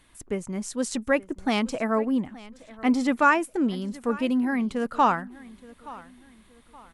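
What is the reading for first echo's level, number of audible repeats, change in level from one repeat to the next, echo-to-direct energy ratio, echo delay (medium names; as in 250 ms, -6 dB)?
-20.0 dB, 2, -9.0 dB, -19.5 dB, 873 ms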